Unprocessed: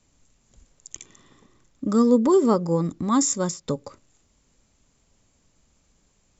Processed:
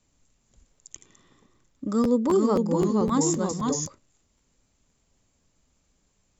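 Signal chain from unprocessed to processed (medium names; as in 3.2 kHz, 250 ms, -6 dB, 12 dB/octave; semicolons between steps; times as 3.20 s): 1.84–3.86 s: ever faster or slower copies 433 ms, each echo -1 st, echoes 2; crackling interface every 0.26 s, samples 512, repeat, from 0.73 s; trim -4.5 dB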